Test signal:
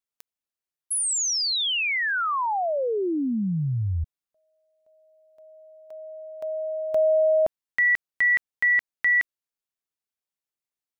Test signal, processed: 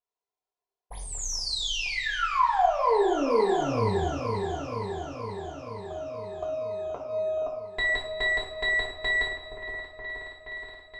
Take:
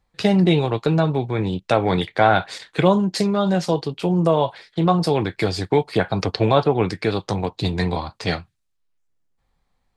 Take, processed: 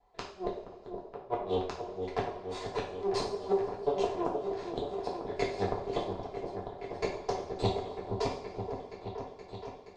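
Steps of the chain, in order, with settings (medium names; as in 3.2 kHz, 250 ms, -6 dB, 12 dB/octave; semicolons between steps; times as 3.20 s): comb filter that takes the minimum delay 2.9 ms; low-pass 7 kHz 24 dB/octave; high-order bell 650 Hz +15 dB; compression 4:1, threshold -19 dBFS; inverted gate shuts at -12 dBFS, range -34 dB; delay with an opening low-pass 473 ms, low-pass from 750 Hz, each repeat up 1 oct, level -6 dB; two-slope reverb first 0.48 s, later 2.4 s, from -18 dB, DRR -3.5 dB; trim -8 dB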